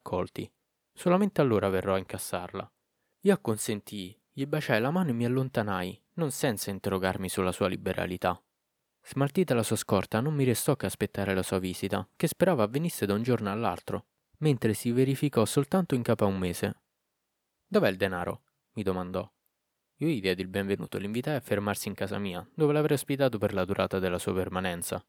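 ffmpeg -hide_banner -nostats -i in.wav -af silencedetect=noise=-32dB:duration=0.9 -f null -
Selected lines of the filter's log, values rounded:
silence_start: 16.72
silence_end: 17.72 | silence_duration: 1.00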